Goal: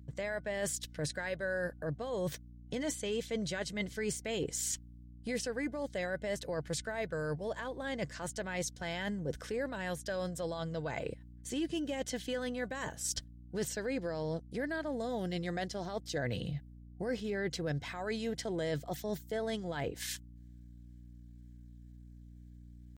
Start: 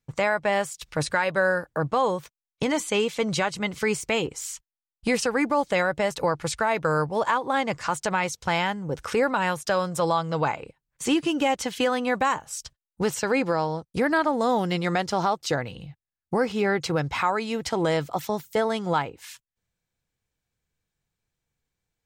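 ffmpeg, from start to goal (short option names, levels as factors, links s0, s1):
-af "areverse,acompressor=threshold=0.0141:ratio=8,areverse,superequalizer=9b=0.316:10b=0.316:12b=0.562,aeval=exprs='val(0)+0.00178*(sin(2*PI*60*n/s)+sin(2*PI*2*60*n/s)/2+sin(2*PI*3*60*n/s)/3+sin(2*PI*4*60*n/s)/4+sin(2*PI*5*60*n/s)/5)':c=same,acontrast=84,atempo=0.96,volume=0.708"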